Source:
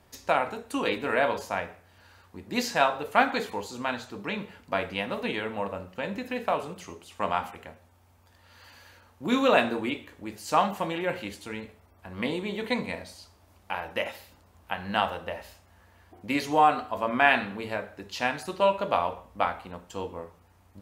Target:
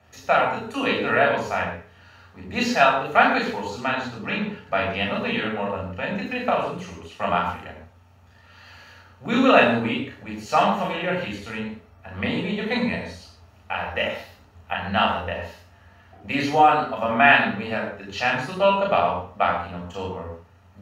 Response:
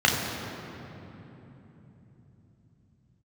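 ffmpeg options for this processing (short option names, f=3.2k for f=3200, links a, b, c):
-filter_complex "[1:a]atrim=start_sample=2205,afade=t=out:st=0.19:d=0.01,atrim=end_sample=8820,asetrate=40131,aresample=44100[a];[0:a][a]afir=irnorm=-1:irlink=0,volume=-11.5dB"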